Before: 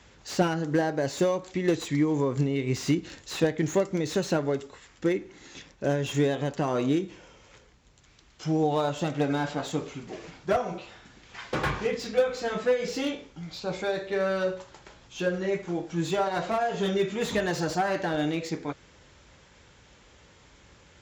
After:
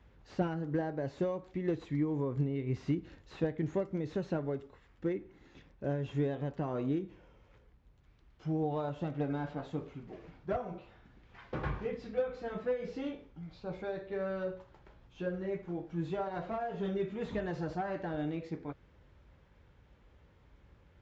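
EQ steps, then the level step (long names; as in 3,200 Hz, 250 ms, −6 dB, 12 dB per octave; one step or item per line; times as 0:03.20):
head-to-tape spacing loss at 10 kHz 30 dB
low-shelf EQ 95 Hz +10 dB
−8.0 dB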